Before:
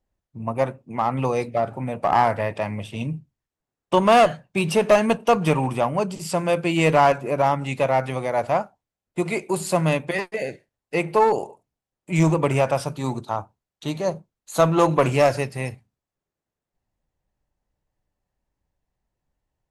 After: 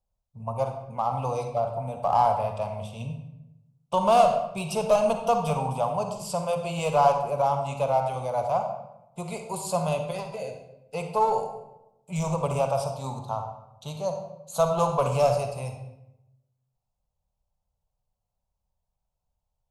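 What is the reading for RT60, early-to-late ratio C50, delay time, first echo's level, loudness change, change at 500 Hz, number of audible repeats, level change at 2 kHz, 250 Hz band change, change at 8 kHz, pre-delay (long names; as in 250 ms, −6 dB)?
0.90 s, 5.5 dB, no echo audible, no echo audible, −4.5 dB, −4.5 dB, no echo audible, −13.0 dB, −10.5 dB, −3.5 dB, 39 ms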